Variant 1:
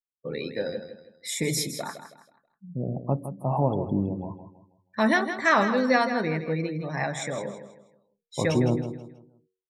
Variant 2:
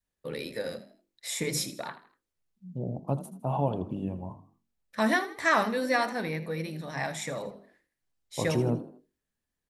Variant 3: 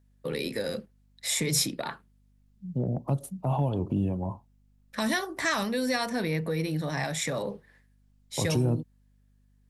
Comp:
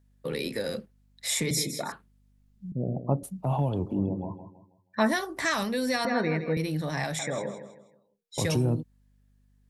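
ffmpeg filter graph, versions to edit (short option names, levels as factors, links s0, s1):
-filter_complex "[0:a]asplit=5[s0][s1][s2][s3][s4];[2:a]asplit=6[s5][s6][s7][s8][s9][s10];[s5]atrim=end=1.512[s11];[s0]atrim=start=1.508:end=1.922[s12];[s6]atrim=start=1.918:end=2.722[s13];[s1]atrim=start=2.718:end=3.232[s14];[s7]atrim=start=3.228:end=4.02[s15];[s2]atrim=start=3.86:end=5.18[s16];[s8]atrim=start=5.02:end=6.052[s17];[s3]atrim=start=6.048:end=6.572[s18];[s9]atrim=start=6.568:end=7.192[s19];[s4]atrim=start=7.188:end=8.382[s20];[s10]atrim=start=8.378[s21];[s11][s12]acrossfade=d=0.004:c1=hsin:c2=hsin[s22];[s22][s13]acrossfade=d=0.004:c1=hsin:c2=hsin[s23];[s23][s14]acrossfade=d=0.004:c1=hsin:c2=hsin[s24];[s24][s15]acrossfade=d=0.004:c1=hsin:c2=hsin[s25];[s25][s16]acrossfade=d=0.16:c1=tri:c2=tri[s26];[s26][s17]acrossfade=d=0.16:c1=tri:c2=tri[s27];[s27][s18]acrossfade=d=0.004:c1=hsin:c2=hsin[s28];[s28][s19]acrossfade=d=0.004:c1=hsin:c2=hsin[s29];[s29][s20]acrossfade=d=0.004:c1=hsin:c2=hsin[s30];[s30][s21]acrossfade=d=0.004:c1=hsin:c2=hsin"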